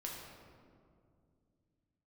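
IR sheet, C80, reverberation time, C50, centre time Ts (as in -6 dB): 2.5 dB, 2.3 s, 1.0 dB, 91 ms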